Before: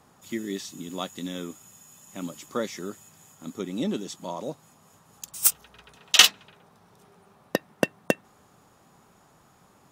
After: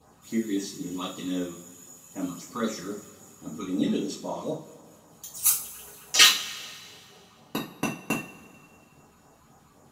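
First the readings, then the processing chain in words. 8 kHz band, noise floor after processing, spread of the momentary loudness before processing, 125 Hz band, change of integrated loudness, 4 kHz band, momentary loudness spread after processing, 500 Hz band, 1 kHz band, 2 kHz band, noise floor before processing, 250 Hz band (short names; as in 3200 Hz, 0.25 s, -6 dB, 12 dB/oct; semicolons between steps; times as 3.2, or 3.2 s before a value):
0.0 dB, -58 dBFS, 21 LU, +0.5 dB, -0.5 dB, -0.5 dB, 21 LU, -2.5 dB, 0.0 dB, +0.5 dB, -59 dBFS, +3.0 dB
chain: phaser stages 12, 3.8 Hz, lowest notch 540–4200 Hz; two-slope reverb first 0.33 s, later 2.1 s, from -21 dB, DRR -8 dB; gain -5.5 dB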